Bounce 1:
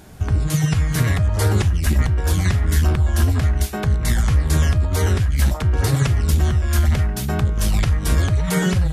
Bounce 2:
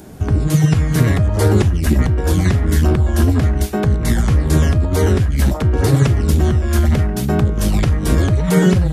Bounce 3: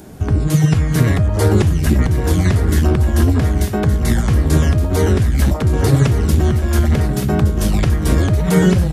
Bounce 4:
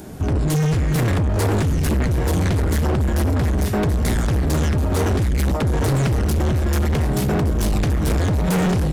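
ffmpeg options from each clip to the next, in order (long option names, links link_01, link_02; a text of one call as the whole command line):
ffmpeg -i in.wav -filter_complex "[0:a]equalizer=frequency=310:width=0.55:gain=10,acrossover=split=360|6000[link_01][link_02][link_03];[link_03]acompressor=mode=upward:threshold=-49dB:ratio=2.5[link_04];[link_01][link_02][link_04]amix=inputs=3:normalize=0" out.wav
ffmpeg -i in.wav -af "aecho=1:1:1168:0.282" out.wav
ffmpeg -i in.wav -af "asoftclip=type=hard:threshold=-18dB,volume=1.5dB" out.wav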